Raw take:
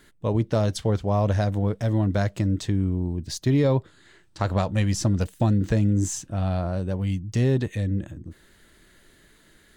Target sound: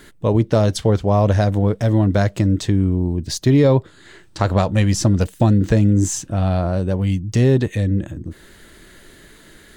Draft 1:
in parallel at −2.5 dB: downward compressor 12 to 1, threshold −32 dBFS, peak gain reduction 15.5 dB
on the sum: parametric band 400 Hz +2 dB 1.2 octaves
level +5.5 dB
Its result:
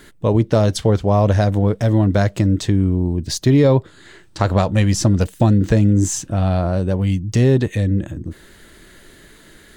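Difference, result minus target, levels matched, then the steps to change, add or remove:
downward compressor: peak gain reduction −6.5 dB
change: downward compressor 12 to 1, threshold −39 dBFS, peak gain reduction 22 dB

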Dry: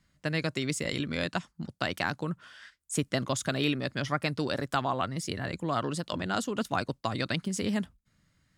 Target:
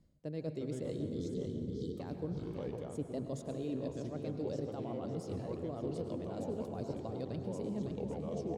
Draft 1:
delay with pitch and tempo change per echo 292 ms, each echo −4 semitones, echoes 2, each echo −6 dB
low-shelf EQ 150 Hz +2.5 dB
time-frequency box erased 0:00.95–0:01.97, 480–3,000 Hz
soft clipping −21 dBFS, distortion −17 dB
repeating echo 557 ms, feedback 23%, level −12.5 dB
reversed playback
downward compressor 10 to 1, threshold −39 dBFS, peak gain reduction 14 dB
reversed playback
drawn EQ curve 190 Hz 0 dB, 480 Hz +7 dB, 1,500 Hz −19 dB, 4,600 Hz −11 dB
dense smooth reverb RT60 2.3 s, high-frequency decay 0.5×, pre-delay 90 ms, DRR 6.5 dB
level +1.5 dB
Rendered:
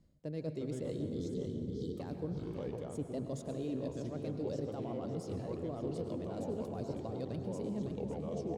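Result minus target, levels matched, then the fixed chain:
soft clipping: distortion +12 dB
delay with pitch and tempo change per echo 292 ms, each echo −4 semitones, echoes 2, each echo −6 dB
low-shelf EQ 150 Hz +2.5 dB
time-frequency box erased 0:00.95–0:01.97, 480–3,000 Hz
soft clipping −13 dBFS, distortion −29 dB
repeating echo 557 ms, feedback 23%, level −12.5 dB
reversed playback
downward compressor 10 to 1, threshold −39 dBFS, peak gain reduction 16.5 dB
reversed playback
drawn EQ curve 190 Hz 0 dB, 480 Hz +7 dB, 1,500 Hz −19 dB, 4,600 Hz −11 dB
dense smooth reverb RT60 2.3 s, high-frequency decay 0.5×, pre-delay 90 ms, DRR 6.5 dB
level +1.5 dB

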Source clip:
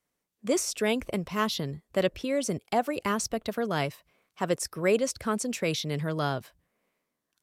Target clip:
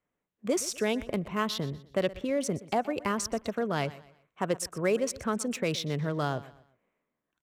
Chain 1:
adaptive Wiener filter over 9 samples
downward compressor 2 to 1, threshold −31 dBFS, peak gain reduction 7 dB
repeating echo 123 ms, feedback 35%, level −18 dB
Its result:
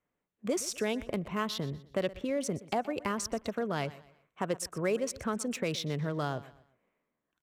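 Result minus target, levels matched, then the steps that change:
downward compressor: peak gain reduction +3.5 dB
change: downward compressor 2 to 1, threshold −24 dBFS, peak gain reduction 3.5 dB

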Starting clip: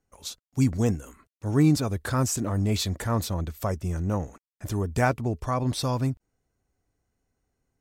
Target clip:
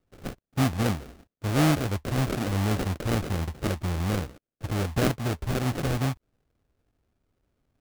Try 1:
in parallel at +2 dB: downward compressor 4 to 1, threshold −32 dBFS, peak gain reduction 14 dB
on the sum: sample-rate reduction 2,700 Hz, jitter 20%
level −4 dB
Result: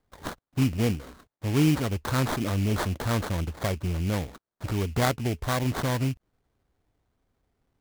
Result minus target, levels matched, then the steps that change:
sample-rate reduction: distortion −6 dB
change: sample-rate reduction 970 Hz, jitter 20%

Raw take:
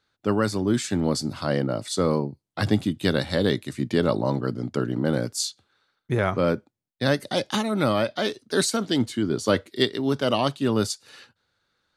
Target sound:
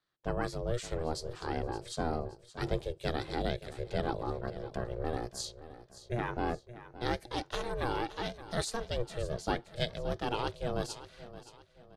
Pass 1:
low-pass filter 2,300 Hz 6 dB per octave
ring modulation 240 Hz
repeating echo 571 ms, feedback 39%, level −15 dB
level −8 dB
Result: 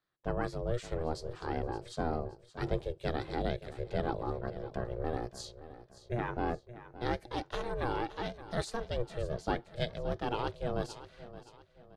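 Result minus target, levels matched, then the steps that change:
8,000 Hz band −7.0 dB
change: low-pass filter 7,800 Hz 6 dB per octave

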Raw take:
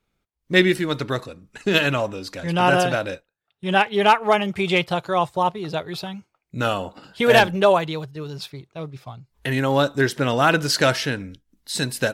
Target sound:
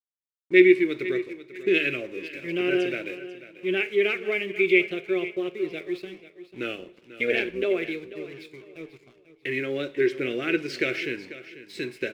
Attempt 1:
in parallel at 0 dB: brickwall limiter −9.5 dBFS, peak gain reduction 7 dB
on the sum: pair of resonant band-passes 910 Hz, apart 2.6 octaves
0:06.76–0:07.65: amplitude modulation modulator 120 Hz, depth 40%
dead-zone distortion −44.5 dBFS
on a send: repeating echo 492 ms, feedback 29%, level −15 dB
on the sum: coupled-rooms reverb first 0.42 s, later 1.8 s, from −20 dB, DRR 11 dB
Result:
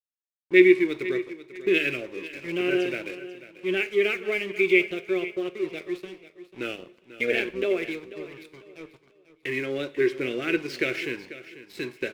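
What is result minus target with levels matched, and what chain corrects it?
dead-zone distortion: distortion +8 dB
in parallel at 0 dB: brickwall limiter −9.5 dBFS, peak gain reduction 7 dB
on the sum: pair of resonant band-passes 910 Hz, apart 2.6 octaves
0:06.76–0:07.65: amplitude modulation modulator 120 Hz, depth 40%
dead-zone distortion −53.5 dBFS
on a send: repeating echo 492 ms, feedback 29%, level −15 dB
on the sum: coupled-rooms reverb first 0.42 s, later 1.8 s, from −20 dB, DRR 11 dB

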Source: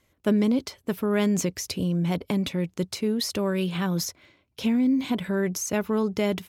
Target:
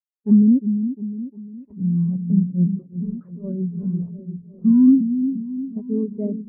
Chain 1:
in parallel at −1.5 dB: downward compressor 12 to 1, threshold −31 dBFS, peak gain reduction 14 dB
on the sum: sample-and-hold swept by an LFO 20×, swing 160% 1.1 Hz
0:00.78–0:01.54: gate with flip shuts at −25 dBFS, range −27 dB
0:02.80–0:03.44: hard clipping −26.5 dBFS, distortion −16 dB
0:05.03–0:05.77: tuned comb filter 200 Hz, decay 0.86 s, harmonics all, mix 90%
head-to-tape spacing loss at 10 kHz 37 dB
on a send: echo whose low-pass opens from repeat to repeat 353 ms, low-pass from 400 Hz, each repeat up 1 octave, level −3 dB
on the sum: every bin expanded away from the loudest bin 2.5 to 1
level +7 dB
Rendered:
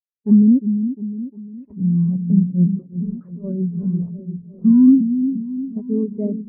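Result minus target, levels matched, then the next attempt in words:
downward compressor: peak gain reduction −9.5 dB
in parallel at −1.5 dB: downward compressor 12 to 1, threshold −41.5 dBFS, peak gain reduction 23.5 dB
on the sum: sample-and-hold swept by an LFO 20×, swing 160% 1.1 Hz
0:00.78–0:01.54: gate with flip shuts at −25 dBFS, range −27 dB
0:02.80–0:03.44: hard clipping −26.5 dBFS, distortion −17 dB
0:05.03–0:05.77: tuned comb filter 200 Hz, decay 0.86 s, harmonics all, mix 90%
head-to-tape spacing loss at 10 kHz 37 dB
on a send: echo whose low-pass opens from repeat to repeat 353 ms, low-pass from 400 Hz, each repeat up 1 octave, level −3 dB
on the sum: every bin expanded away from the loudest bin 2.5 to 1
level +7 dB

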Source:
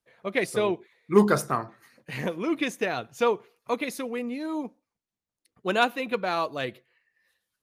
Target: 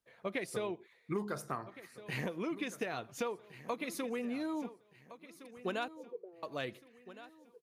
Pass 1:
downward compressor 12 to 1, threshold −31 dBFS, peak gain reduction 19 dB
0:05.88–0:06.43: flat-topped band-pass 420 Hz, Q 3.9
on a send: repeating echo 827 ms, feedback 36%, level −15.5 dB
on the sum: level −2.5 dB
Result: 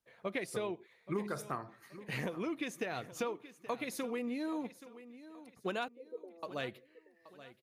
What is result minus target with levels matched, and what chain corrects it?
echo 587 ms early
downward compressor 12 to 1, threshold −31 dBFS, peak gain reduction 19 dB
0:05.88–0:06.43: flat-topped band-pass 420 Hz, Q 3.9
on a send: repeating echo 1,414 ms, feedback 36%, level −15.5 dB
on the sum: level −2.5 dB

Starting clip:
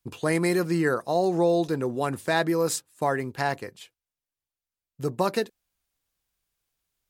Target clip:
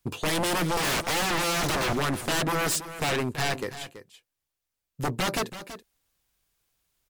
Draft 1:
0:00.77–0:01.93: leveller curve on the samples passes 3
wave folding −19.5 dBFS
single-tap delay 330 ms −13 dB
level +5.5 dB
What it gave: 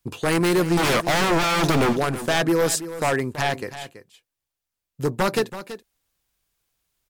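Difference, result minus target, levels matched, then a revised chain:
wave folding: distortion −14 dB
0:00.77–0:01.93: leveller curve on the samples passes 3
wave folding −26.5 dBFS
single-tap delay 330 ms −13 dB
level +5.5 dB

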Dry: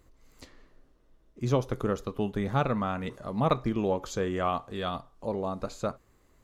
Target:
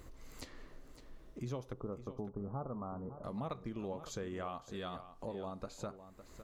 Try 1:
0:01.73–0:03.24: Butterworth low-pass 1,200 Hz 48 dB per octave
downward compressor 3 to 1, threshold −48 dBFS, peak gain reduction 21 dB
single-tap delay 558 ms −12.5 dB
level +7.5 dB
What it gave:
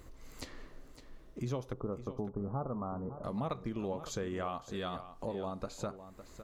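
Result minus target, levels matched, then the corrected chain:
downward compressor: peak gain reduction −4.5 dB
0:01.73–0:03.24: Butterworth low-pass 1,200 Hz 48 dB per octave
downward compressor 3 to 1, threshold −54.5 dBFS, peak gain reduction 25 dB
single-tap delay 558 ms −12.5 dB
level +7.5 dB

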